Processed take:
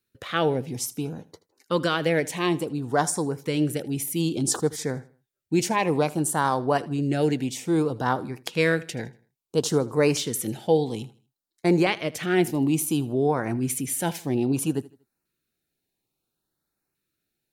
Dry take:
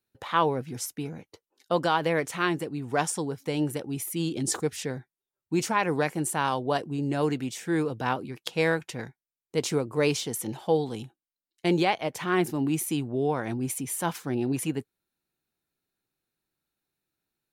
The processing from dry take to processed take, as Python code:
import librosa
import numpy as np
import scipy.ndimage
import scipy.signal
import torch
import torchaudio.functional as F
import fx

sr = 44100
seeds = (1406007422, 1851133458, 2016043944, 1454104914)

p1 = fx.filter_lfo_notch(x, sr, shape='saw_up', hz=0.59, low_hz=690.0, high_hz=3700.0, q=1.4)
p2 = p1 + fx.echo_feedback(p1, sr, ms=79, feedback_pct=35, wet_db=-20.0, dry=0)
y = F.gain(torch.from_numpy(p2), 4.0).numpy()